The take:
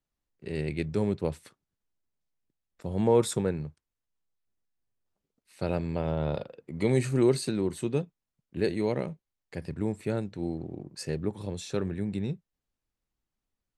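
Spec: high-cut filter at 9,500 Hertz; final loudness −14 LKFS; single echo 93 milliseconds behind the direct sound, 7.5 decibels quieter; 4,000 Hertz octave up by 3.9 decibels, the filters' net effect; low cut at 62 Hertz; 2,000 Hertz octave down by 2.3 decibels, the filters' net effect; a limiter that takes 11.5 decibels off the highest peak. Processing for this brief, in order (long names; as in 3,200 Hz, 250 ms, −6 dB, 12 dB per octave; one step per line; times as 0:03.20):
high-pass filter 62 Hz
low-pass filter 9,500 Hz
parametric band 2,000 Hz −4.5 dB
parametric band 4,000 Hz +5.5 dB
brickwall limiter −23 dBFS
single-tap delay 93 ms −7.5 dB
level +20 dB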